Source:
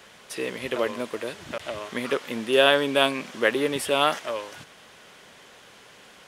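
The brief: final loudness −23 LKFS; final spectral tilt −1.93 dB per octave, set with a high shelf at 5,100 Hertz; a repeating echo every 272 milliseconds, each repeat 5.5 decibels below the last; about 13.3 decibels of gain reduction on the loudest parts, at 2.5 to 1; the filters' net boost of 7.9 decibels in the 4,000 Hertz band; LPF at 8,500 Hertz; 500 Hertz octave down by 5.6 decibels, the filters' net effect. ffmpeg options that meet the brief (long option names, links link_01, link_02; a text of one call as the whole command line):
ffmpeg -i in.wav -af "lowpass=8500,equalizer=frequency=500:width_type=o:gain=-7,equalizer=frequency=4000:width_type=o:gain=8,highshelf=frequency=5100:gain=6.5,acompressor=threshold=-32dB:ratio=2.5,aecho=1:1:272|544|816|1088|1360|1632|1904:0.531|0.281|0.149|0.079|0.0419|0.0222|0.0118,volume=8.5dB" out.wav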